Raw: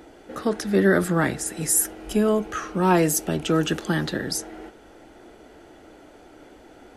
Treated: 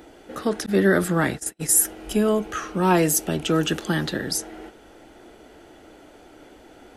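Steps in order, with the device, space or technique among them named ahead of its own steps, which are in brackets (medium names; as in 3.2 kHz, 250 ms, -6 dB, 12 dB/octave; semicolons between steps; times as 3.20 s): 0.66–1.79 s: gate -28 dBFS, range -39 dB; presence and air boost (peaking EQ 3.1 kHz +2.5 dB; treble shelf 9.5 kHz +5 dB)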